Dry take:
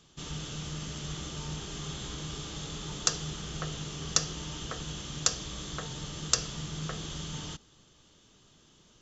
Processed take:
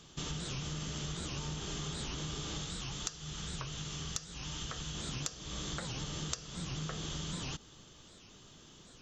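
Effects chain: compressor 12:1, threshold -40 dBFS, peak gain reduction 21 dB; 2.63–4.95 bell 410 Hz -6 dB 2.3 oct; record warp 78 rpm, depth 250 cents; gain +4.5 dB

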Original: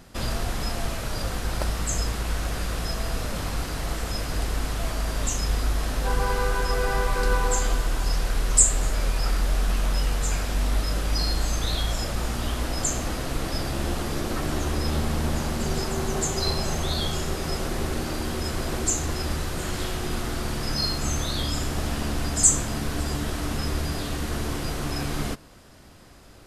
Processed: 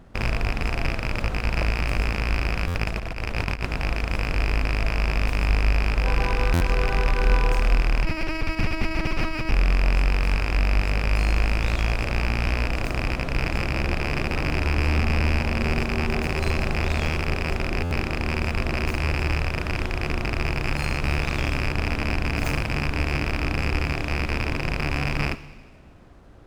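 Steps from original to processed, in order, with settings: rattling part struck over -30 dBFS, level -8 dBFS; 8.03–9.52 LPC vocoder at 8 kHz pitch kept; LPF 1400 Hz 6 dB/oct; low shelf 67 Hz +5 dB; Schroeder reverb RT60 1.5 s, combs from 27 ms, DRR 14 dB; 2.75–3.67 negative-ratio compressor -26 dBFS, ratio -0.5; stuck buffer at 2.67/6.53/17.83, samples 512, times 6; running maximum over 5 samples

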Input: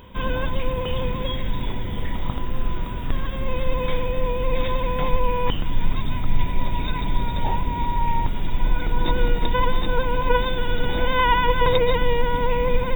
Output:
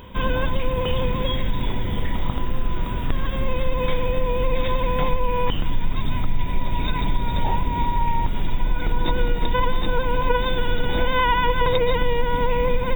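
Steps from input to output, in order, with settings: compressor 3:1, threshold -19 dBFS, peak gain reduction 7 dB; gain +3.5 dB

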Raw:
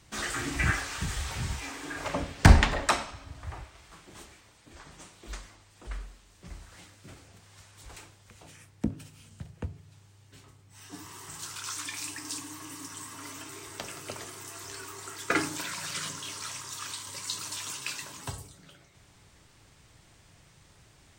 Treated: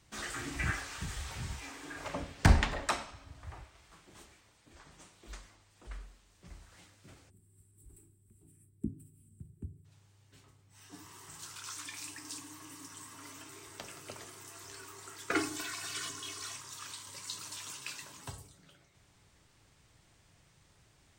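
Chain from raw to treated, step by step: 7.3–9.85 spectral gain 410–7500 Hz -24 dB; 15.33–16.56 comb 2.7 ms, depth 100%; gain -7 dB

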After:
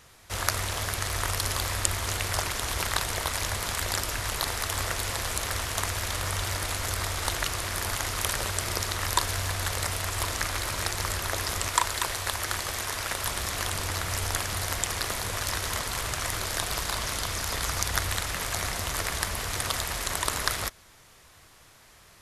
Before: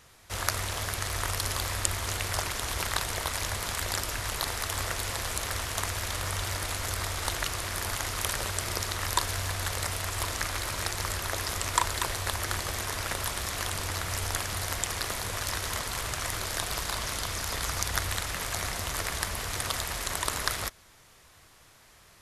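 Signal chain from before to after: 11.68–13.25 low shelf 420 Hz -5.5 dB; gain +2 dB

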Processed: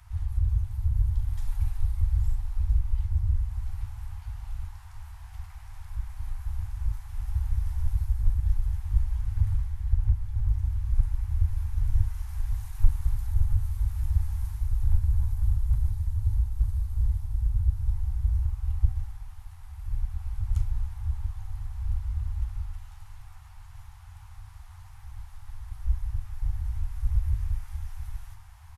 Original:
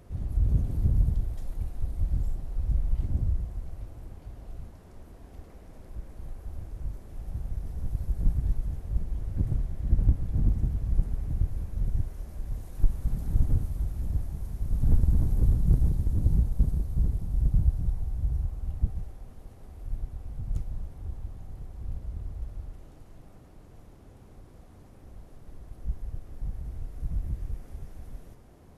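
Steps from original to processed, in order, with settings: Chebyshev band-stop 110–840 Hz, order 4; early reflections 13 ms -10.5 dB, 39 ms -11.5 dB, 71 ms -18 dB; vocal rider within 4 dB 0.5 s; gain +2.5 dB

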